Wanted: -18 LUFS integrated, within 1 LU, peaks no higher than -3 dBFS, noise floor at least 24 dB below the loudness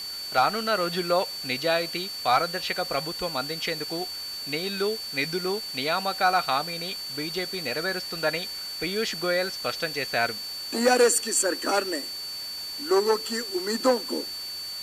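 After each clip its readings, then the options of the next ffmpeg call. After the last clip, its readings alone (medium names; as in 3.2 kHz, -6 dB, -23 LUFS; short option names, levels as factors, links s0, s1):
steady tone 4.5 kHz; tone level -33 dBFS; noise floor -35 dBFS; noise floor target -50 dBFS; loudness -26.0 LUFS; peak level -10.0 dBFS; loudness target -18.0 LUFS
-> -af "bandreject=f=4500:w=30"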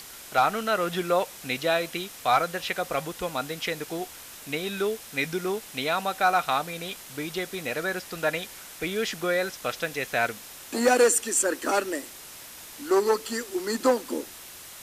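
steady tone not found; noise floor -44 dBFS; noise floor target -51 dBFS
-> -af "afftdn=nr=7:nf=-44"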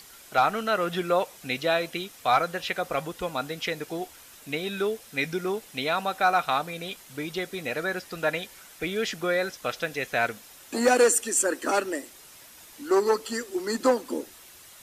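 noise floor -50 dBFS; noise floor target -51 dBFS
-> -af "afftdn=nr=6:nf=-50"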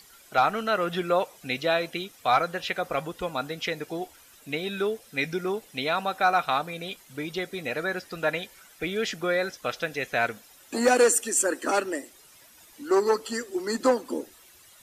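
noise floor -54 dBFS; loudness -27.0 LUFS; peak level -11.0 dBFS; loudness target -18.0 LUFS
-> -af "volume=2.82,alimiter=limit=0.708:level=0:latency=1"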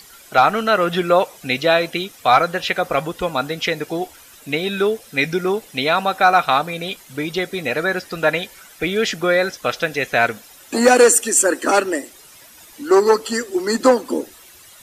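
loudness -18.5 LUFS; peak level -3.0 dBFS; noise floor -45 dBFS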